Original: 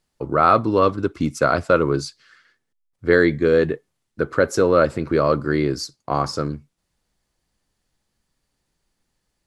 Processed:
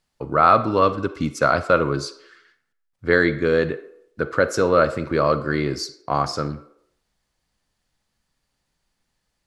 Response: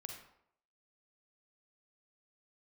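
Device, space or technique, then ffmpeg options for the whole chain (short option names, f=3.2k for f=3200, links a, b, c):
filtered reverb send: -filter_complex "[0:a]asplit=2[a][b];[b]highpass=f=340:w=0.5412,highpass=f=340:w=1.3066,lowpass=6.9k[c];[1:a]atrim=start_sample=2205[d];[c][d]afir=irnorm=-1:irlink=0,volume=-3dB[e];[a][e]amix=inputs=2:normalize=0,volume=-1.5dB"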